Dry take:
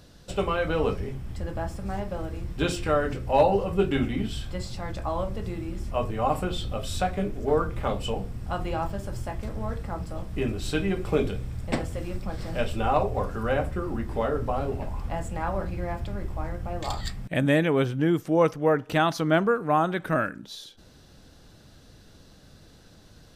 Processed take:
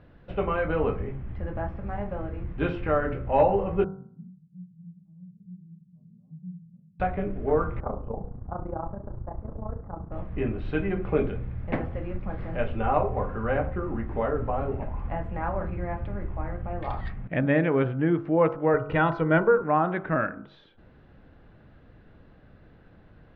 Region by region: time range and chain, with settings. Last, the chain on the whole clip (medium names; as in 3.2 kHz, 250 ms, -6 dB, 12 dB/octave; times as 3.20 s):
3.84–7.00 s: Butterworth band-pass 170 Hz, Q 6 + chorus 1.6 Hz, delay 19 ms, depth 5.6 ms
7.80–10.12 s: low-pass 1.2 kHz 24 dB/octave + AM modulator 29 Hz, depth 75%
18.74–19.63 s: bass shelf 150 Hz +10 dB + hum notches 50/100/150/200/250/300/350/400 Hz + comb 2.1 ms, depth 57%
whole clip: low-pass 2.3 kHz 24 dB/octave; de-hum 48.1 Hz, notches 32